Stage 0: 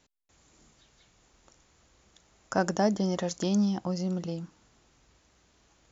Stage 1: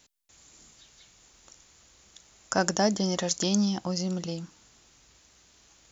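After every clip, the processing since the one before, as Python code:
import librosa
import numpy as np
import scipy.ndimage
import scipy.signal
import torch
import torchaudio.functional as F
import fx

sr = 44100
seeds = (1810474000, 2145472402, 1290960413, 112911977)

y = fx.high_shelf(x, sr, hz=2400.0, db=11.5)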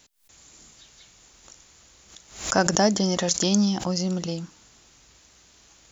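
y = fx.pre_swell(x, sr, db_per_s=120.0)
y = y * librosa.db_to_amplitude(4.0)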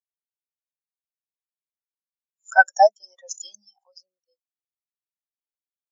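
y = scipy.signal.sosfilt(scipy.signal.butter(2, 920.0, 'highpass', fs=sr, output='sos'), x)
y = fx.spectral_expand(y, sr, expansion=4.0)
y = y * librosa.db_to_amplitude(2.5)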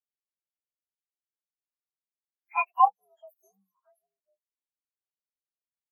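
y = fx.partial_stretch(x, sr, pct=126)
y = fx.bandpass_q(y, sr, hz=420.0, q=0.53)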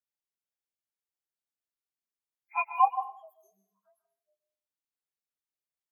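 y = fx.rev_plate(x, sr, seeds[0], rt60_s=0.5, hf_ratio=0.95, predelay_ms=115, drr_db=9.5)
y = y * librosa.db_to_amplitude(-3.0)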